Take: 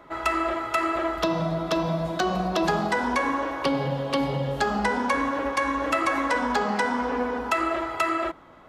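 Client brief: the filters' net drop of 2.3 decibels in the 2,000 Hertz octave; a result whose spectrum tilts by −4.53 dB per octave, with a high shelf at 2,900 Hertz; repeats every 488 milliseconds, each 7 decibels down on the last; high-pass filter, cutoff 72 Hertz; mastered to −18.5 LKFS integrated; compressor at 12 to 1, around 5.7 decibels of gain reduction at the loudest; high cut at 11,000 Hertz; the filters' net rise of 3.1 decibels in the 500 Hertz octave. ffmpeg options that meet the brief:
ffmpeg -i in.wav -af "highpass=72,lowpass=11000,equalizer=frequency=500:width_type=o:gain=4,equalizer=frequency=2000:width_type=o:gain=-6,highshelf=frequency=2900:gain=7.5,acompressor=threshold=-24dB:ratio=12,aecho=1:1:488|976|1464|1952|2440:0.447|0.201|0.0905|0.0407|0.0183,volume=9dB" out.wav

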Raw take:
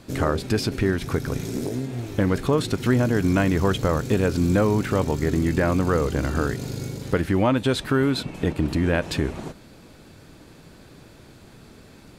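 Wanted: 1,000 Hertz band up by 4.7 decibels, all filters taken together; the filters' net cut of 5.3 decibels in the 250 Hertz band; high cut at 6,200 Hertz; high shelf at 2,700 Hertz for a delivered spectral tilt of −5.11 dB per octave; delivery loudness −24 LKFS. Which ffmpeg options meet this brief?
ffmpeg -i in.wav -af "lowpass=6200,equalizer=frequency=250:width_type=o:gain=-7.5,equalizer=frequency=1000:width_type=o:gain=5,highshelf=frequency=2700:gain=8.5" out.wav

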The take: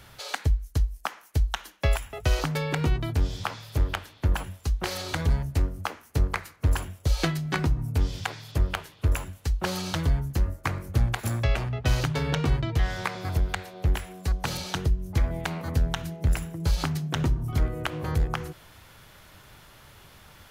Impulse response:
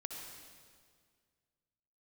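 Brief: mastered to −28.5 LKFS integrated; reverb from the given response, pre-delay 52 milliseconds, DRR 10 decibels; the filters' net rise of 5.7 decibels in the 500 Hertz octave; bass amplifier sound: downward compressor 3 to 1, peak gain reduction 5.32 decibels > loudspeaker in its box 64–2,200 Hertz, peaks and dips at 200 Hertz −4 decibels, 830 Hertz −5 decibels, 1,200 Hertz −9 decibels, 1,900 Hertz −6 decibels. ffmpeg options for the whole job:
-filter_complex "[0:a]equalizer=frequency=500:width_type=o:gain=8,asplit=2[link_01][link_02];[1:a]atrim=start_sample=2205,adelay=52[link_03];[link_02][link_03]afir=irnorm=-1:irlink=0,volume=-8.5dB[link_04];[link_01][link_04]amix=inputs=2:normalize=0,acompressor=threshold=-22dB:ratio=3,highpass=frequency=64:width=0.5412,highpass=frequency=64:width=1.3066,equalizer=frequency=200:width_type=q:width=4:gain=-4,equalizer=frequency=830:width_type=q:width=4:gain=-5,equalizer=frequency=1200:width_type=q:width=4:gain=-9,equalizer=frequency=1900:width_type=q:width=4:gain=-6,lowpass=frequency=2200:width=0.5412,lowpass=frequency=2200:width=1.3066,volume=3dB"

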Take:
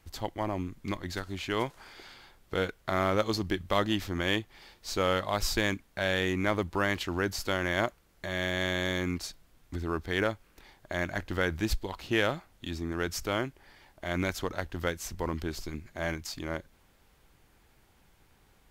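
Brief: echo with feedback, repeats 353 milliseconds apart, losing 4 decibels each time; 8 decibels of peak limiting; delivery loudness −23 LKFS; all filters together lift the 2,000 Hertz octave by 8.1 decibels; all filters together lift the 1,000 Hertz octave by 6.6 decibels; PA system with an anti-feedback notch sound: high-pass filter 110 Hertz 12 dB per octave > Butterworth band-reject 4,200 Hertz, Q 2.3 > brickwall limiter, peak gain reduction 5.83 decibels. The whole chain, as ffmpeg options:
ffmpeg -i in.wav -af "equalizer=frequency=1000:width_type=o:gain=6,equalizer=frequency=2000:width_type=o:gain=8,alimiter=limit=-13dB:level=0:latency=1,highpass=110,asuperstop=centerf=4200:order=8:qfactor=2.3,aecho=1:1:353|706|1059|1412|1765|2118|2471|2824|3177:0.631|0.398|0.25|0.158|0.0994|0.0626|0.0394|0.0249|0.0157,volume=6.5dB,alimiter=limit=-8.5dB:level=0:latency=1" out.wav

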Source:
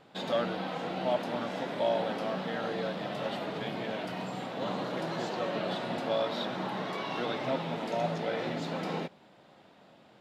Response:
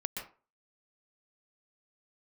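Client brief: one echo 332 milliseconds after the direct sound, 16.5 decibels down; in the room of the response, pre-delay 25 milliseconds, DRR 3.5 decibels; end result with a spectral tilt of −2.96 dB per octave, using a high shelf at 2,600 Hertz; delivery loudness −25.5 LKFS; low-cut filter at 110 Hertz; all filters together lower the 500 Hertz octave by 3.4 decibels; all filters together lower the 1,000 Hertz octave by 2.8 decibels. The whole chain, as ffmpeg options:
-filter_complex "[0:a]highpass=110,equalizer=frequency=500:width_type=o:gain=-3.5,equalizer=frequency=1000:width_type=o:gain=-3.5,highshelf=frequency=2600:gain=7.5,aecho=1:1:332:0.15,asplit=2[link_01][link_02];[1:a]atrim=start_sample=2205,adelay=25[link_03];[link_02][link_03]afir=irnorm=-1:irlink=0,volume=-5.5dB[link_04];[link_01][link_04]amix=inputs=2:normalize=0,volume=7.5dB"

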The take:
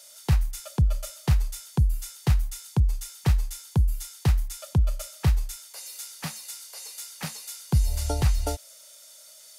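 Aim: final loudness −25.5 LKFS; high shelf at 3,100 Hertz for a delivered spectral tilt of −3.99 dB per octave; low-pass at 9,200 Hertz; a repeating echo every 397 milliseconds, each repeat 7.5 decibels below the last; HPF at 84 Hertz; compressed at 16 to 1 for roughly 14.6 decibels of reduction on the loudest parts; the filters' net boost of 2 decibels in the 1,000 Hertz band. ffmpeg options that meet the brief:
ffmpeg -i in.wav -af "highpass=84,lowpass=9200,equalizer=frequency=1000:width_type=o:gain=3,highshelf=frequency=3100:gain=-3.5,acompressor=threshold=-33dB:ratio=16,aecho=1:1:397|794|1191|1588|1985:0.422|0.177|0.0744|0.0312|0.0131,volume=15dB" out.wav

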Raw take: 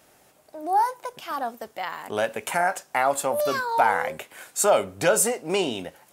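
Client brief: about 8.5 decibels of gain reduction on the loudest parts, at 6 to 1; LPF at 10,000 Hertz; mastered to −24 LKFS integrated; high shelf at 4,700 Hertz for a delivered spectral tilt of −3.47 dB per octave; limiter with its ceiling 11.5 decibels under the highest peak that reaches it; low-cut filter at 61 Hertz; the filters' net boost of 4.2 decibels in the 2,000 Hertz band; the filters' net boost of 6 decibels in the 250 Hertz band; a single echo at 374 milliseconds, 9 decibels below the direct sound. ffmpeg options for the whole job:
ffmpeg -i in.wav -af "highpass=61,lowpass=10000,equalizer=frequency=250:width_type=o:gain=8,equalizer=frequency=2000:width_type=o:gain=6.5,highshelf=frequency=4700:gain=-6,acompressor=threshold=-22dB:ratio=6,alimiter=limit=-21.5dB:level=0:latency=1,aecho=1:1:374:0.355,volume=7.5dB" out.wav

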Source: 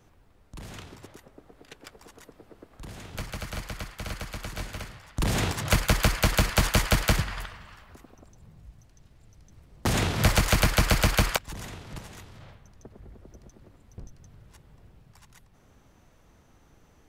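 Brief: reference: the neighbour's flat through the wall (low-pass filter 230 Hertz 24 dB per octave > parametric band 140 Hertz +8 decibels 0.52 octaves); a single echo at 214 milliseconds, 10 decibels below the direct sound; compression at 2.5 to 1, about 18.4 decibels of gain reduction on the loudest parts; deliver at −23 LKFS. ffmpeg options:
ffmpeg -i in.wav -af "acompressor=threshold=-46dB:ratio=2.5,lowpass=frequency=230:width=0.5412,lowpass=frequency=230:width=1.3066,equalizer=frequency=140:width_type=o:width=0.52:gain=8,aecho=1:1:214:0.316,volume=23.5dB" out.wav

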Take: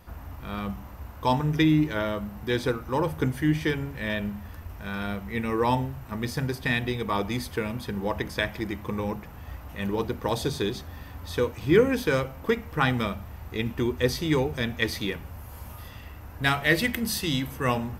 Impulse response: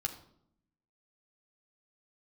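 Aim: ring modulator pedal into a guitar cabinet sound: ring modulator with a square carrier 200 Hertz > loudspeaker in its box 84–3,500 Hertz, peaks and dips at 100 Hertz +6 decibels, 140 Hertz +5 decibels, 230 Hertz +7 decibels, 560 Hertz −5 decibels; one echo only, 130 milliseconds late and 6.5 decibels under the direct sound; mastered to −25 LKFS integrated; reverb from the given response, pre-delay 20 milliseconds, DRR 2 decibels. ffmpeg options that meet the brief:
-filter_complex "[0:a]aecho=1:1:130:0.473,asplit=2[link_01][link_02];[1:a]atrim=start_sample=2205,adelay=20[link_03];[link_02][link_03]afir=irnorm=-1:irlink=0,volume=-3.5dB[link_04];[link_01][link_04]amix=inputs=2:normalize=0,aeval=exprs='val(0)*sgn(sin(2*PI*200*n/s))':channel_layout=same,highpass=84,equalizer=frequency=100:width_type=q:width=4:gain=6,equalizer=frequency=140:width_type=q:width=4:gain=5,equalizer=frequency=230:width_type=q:width=4:gain=7,equalizer=frequency=560:width_type=q:width=4:gain=-5,lowpass=frequency=3500:width=0.5412,lowpass=frequency=3500:width=1.3066,volume=-0.5dB"

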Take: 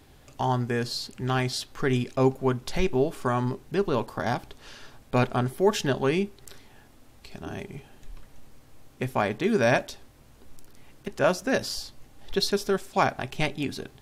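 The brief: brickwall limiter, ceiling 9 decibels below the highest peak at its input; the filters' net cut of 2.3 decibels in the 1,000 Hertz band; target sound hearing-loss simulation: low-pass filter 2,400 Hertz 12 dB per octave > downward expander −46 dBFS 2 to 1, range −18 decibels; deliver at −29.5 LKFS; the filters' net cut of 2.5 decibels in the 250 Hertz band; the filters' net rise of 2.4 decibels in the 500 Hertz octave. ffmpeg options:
ffmpeg -i in.wav -af "equalizer=frequency=250:width_type=o:gain=-5.5,equalizer=frequency=500:width_type=o:gain=6.5,equalizer=frequency=1000:width_type=o:gain=-5.5,alimiter=limit=-18dB:level=0:latency=1,lowpass=2400,agate=range=-18dB:threshold=-46dB:ratio=2,volume=1dB" out.wav

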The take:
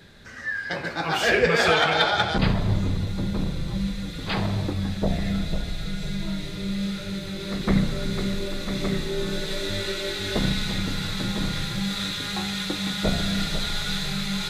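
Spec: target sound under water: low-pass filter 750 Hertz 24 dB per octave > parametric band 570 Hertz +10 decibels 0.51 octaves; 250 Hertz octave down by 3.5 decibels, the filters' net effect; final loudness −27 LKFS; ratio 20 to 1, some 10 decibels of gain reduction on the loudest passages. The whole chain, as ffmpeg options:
ffmpeg -i in.wav -af "equalizer=frequency=250:width_type=o:gain=-6,acompressor=threshold=-26dB:ratio=20,lowpass=frequency=750:width=0.5412,lowpass=frequency=750:width=1.3066,equalizer=frequency=570:width_type=o:width=0.51:gain=10,volume=6dB" out.wav

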